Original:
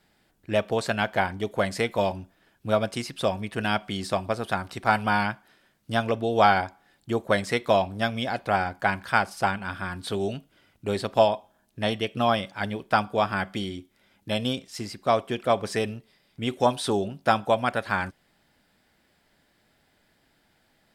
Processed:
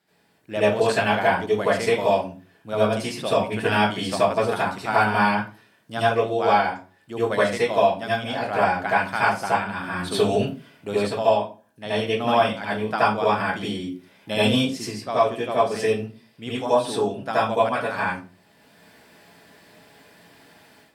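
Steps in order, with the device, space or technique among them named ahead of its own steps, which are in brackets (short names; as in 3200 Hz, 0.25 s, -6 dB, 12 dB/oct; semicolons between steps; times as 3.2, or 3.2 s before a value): far laptop microphone (reverb RT60 0.35 s, pre-delay 71 ms, DRR -9.5 dB; HPF 140 Hz 12 dB/oct; AGC); gain -6 dB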